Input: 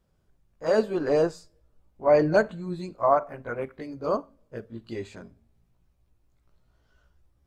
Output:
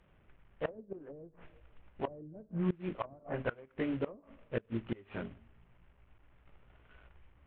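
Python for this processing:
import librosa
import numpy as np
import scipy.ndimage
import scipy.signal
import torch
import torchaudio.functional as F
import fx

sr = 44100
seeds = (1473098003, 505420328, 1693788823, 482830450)

y = fx.cvsd(x, sr, bps=16000)
y = fx.env_lowpass_down(y, sr, base_hz=300.0, full_db=-20.5)
y = fx.gate_flip(y, sr, shuts_db=-25.0, range_db=-25)
y = F.gain(torch.from_numpy(y), 4.0).numpy()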